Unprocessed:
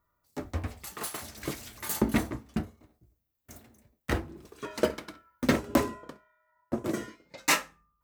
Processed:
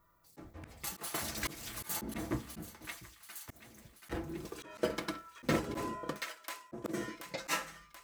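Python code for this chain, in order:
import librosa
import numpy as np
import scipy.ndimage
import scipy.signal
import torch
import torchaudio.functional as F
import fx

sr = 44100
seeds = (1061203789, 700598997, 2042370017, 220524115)

y = x + 0.41 * np.pad(x, (int(6.0 * sr / 1000.0), 0))[:len(x)]
y = fx.echo_wet_highpass(y, sr, ms=731, feedback_pct=51, hz=1500.0, wet_db=-15)
y = fx.auto_swell(y, sr, attack_ms=356.0)
y = y * librosa.db_to_amplitude(6.0)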